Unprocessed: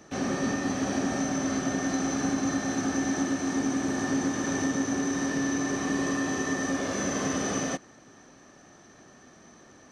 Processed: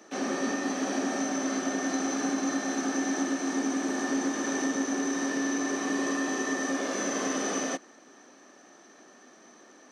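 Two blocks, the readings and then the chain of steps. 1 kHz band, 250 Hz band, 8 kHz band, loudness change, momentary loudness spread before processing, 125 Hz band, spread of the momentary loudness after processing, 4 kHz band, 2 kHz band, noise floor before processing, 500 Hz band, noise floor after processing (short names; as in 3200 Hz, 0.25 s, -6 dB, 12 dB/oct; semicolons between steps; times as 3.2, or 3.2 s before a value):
0.0 dB, -1.5 dB, 0.0 dB, -1.0 dB, 1 LU, -12.5 dB, 1 LU, 0.0 dB, 0.0 dB, -54 dBFS, 0.0 dB, -55 dBFS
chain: HPF 240 Hz 24 dB/oct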